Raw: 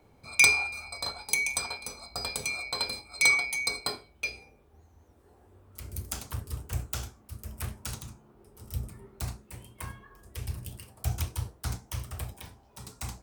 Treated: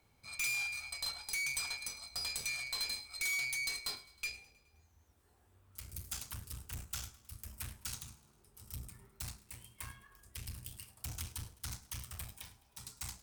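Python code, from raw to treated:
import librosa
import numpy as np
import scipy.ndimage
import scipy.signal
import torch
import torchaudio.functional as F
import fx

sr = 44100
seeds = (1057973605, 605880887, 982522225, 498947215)

y = fx.tube_stage(x, sr, drive_db=34.0, bias=0.65)
y = fx.tone_stack(y, sr, knobs='5-5-5')
y = fx.echo_feedback(y, sr, ms=105, feedback_pct=58, wet_db=-20.0)
y = y * librosa.db_to_amplitude(8.5)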